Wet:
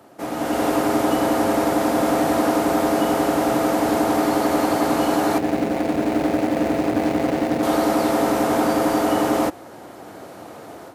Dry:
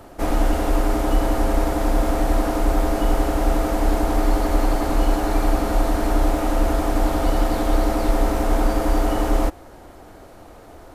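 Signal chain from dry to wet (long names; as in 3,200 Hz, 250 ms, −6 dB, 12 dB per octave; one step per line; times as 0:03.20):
0:05.38–0:07.63: running median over 41 samples
high-pass filter 120 Hz 24 dB per octave
automatic gain control gain up to 11.5 dB
level −5 dB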